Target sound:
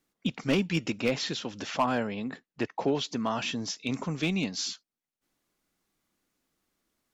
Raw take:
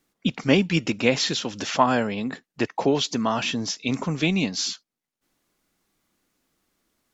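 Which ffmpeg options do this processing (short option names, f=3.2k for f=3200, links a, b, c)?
-filter_complex "[0:a]asettb=1/sr,asplit=3[a][b][c];[a]atrim=end=1.014[d];[b]atrim=start=1.01:end=3.25,asetpts=PTS-STARTPTS,afade=t=in:d=0.004:c=qsin,afade=t=out:st=2.236:d=0.004:c=qsin,highshelf=f=6.5k:g=-9[e];[c]atrim=start=3.246[f];[d][e]acrossfade=d=0.004:c1=hsin:c2=qsin[g];[g][f]acrossfade=d=0.004:c1=qsin:c2=hsin,asoftclip=type=hard:threshold=-12dB,volume=-6dB"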